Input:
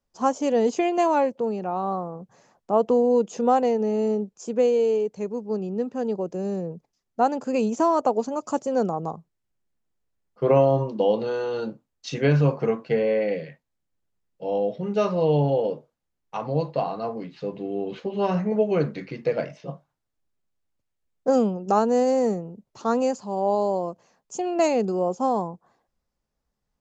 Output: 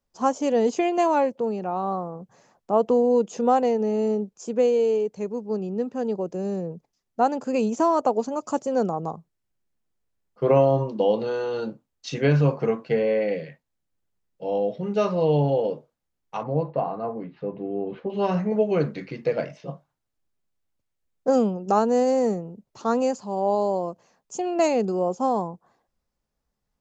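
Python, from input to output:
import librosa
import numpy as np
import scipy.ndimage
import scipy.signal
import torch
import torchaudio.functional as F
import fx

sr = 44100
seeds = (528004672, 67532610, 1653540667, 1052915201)

y = fx.lowpass(x, sr, hz=1700.0, slope=12, at=(16.43, 18.1))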